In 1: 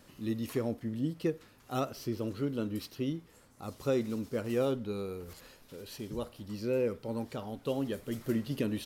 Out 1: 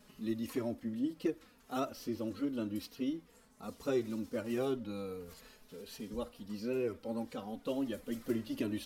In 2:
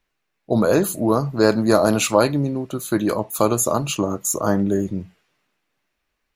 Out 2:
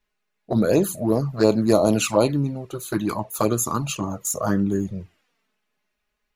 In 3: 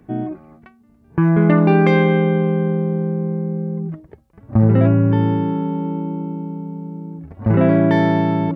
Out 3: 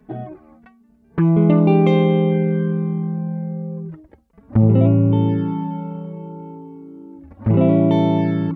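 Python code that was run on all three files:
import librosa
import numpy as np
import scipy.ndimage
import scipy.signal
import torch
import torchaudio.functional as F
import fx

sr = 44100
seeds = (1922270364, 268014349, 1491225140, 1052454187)

y = fx.env_flanger(x, sr, rest_ms=4.8, full_db=-11.5)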